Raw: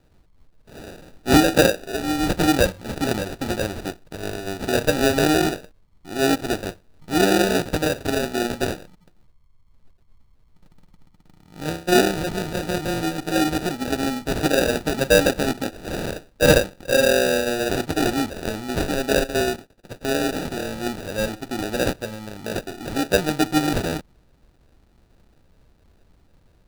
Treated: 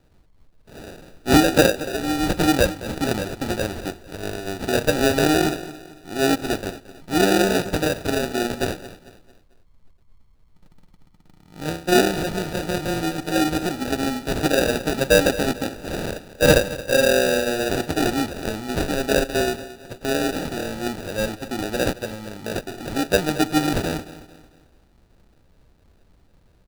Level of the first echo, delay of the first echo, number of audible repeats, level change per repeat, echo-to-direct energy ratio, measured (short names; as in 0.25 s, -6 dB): -16.0 dB, 0.223 s, 3, -8.0 dB, -15.5 dB